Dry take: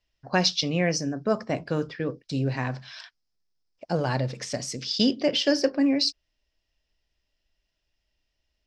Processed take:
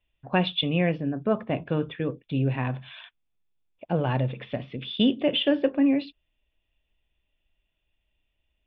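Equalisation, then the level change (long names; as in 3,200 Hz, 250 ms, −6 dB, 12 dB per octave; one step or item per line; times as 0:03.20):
parametric band 980 Hz −8.5 dB 2.3 octaves
dynamic equaliser 2,300 Hz, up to −4 dB, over −53 dBFS, Q 6.5
Chebyshev low-pass with heavy ripple 3,600 Hz, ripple 6 dB
+8.5 dB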